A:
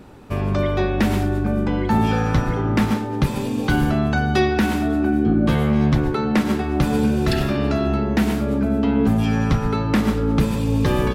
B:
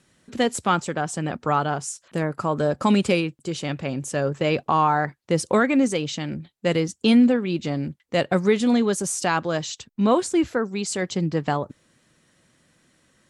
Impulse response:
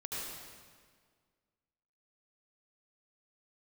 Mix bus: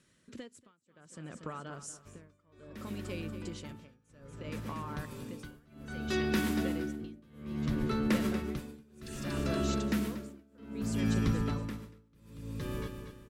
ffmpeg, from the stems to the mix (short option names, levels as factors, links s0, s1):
-filter_complex "[0:a]highshelf=f=6100:g=8,adelay=1750,volume=0.282,afade=t=in:st=5.07:d=0.3:silence=0.298538,afade=t=out:st=11.03:d=0.68:silence=0.446684,asplit=2[s0][s1];[s1]volume=0.376[s2];[1:a]acompressor=threshold=0.0316:ratio=8,volume=0.473,asplit=2[s3][s4];[s4]volume=0.266[s5];[s2][s5]amix=inputs=2:normalize=0,aecho=0:1:236|472|708|944|1180|1416|1652:1|0.5|0.25|0.125|0.0625|0.0312|0.0156[s6];[s0][s3][s6]amix=inputs=3:normalize=0,equalizer=f=780:w=4.5:g=-12.5,tremolo=f=0.62:d=0.98"